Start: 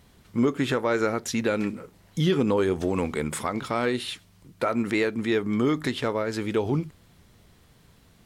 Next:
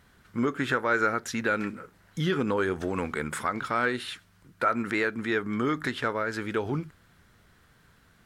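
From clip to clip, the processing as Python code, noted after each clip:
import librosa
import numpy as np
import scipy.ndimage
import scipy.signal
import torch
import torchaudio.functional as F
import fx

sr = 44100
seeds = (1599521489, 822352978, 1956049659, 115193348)

y = fx.peak_eq(x, sr, hz=1500.0, db=12.0, octaves=0.76)
y = F.gain(torch.from_numpy(y), -5.0).numpy()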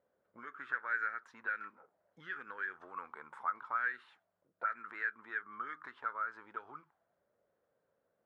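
y = fx.auto_wah(x, sr, base_hz=540.0, top_hz=1700.0, q=6.0, full_db=-22.0, direction='up')
y = F.gain(torch.from_numpy(y), -2.5).numpy()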